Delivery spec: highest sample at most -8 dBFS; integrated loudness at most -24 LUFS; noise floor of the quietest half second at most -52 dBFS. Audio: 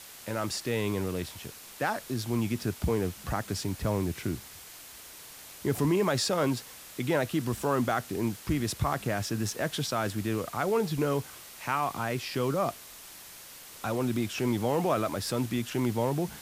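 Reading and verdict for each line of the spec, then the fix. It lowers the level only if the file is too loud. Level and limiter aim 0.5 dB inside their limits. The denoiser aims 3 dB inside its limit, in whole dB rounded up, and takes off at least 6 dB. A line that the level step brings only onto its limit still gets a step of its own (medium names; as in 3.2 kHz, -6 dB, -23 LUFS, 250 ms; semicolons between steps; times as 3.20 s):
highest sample -14.0 dBFS: pass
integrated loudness -30.5 LUFS: pass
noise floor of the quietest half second -48 dBFS: fail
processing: noise reduction 7 dB, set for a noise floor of -48 dBFS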